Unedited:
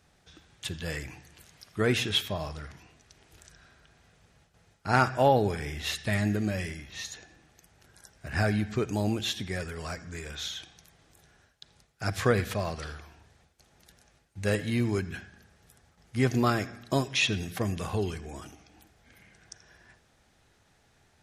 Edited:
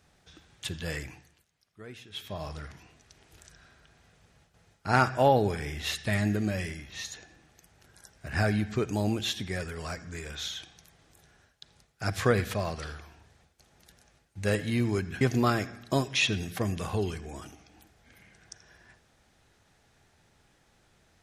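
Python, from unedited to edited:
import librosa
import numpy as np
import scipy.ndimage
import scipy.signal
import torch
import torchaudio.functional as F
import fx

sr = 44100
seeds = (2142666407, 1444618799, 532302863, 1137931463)

y = fx.edit(x, sr, fx.fade_down_up(start_s=1.01, length_s=1.54, db=-20.0, fade_s=0.44),
    fx.cut(start_s=15.21, length_s=1.0), tone=tone)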